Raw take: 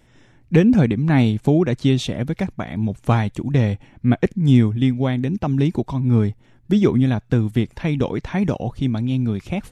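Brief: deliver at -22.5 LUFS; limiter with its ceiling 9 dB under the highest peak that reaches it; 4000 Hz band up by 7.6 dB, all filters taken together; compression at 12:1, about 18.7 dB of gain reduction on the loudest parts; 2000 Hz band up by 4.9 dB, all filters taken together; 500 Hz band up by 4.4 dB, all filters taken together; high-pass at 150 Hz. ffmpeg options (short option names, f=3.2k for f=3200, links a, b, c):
-af "highpass=150,equalizer=f=500:t=o:g=5.5,equalizer=f=2k:t=o:g=3.5,equalizer=f=4k:t=o:g=8,acompressor=threshold=-27dB:ratio=12,volume=11.5dB,alimiter=limit=-11dB:level=0:latency=1"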